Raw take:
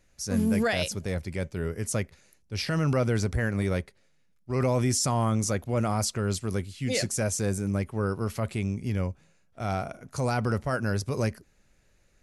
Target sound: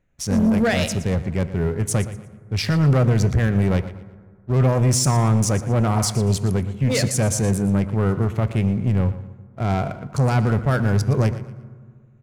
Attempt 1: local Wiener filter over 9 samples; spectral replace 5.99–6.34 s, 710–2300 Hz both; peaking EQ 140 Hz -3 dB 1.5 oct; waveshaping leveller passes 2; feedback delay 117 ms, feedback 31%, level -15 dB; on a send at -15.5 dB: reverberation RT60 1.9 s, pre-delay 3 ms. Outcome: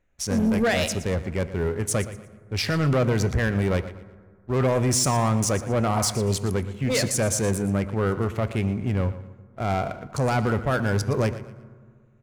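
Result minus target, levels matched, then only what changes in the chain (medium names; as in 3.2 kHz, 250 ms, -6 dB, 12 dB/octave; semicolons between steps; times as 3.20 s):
125 Hz band -2.5 dB
change: peaking EQ 140 Hz +5.5 dB 1.5 oct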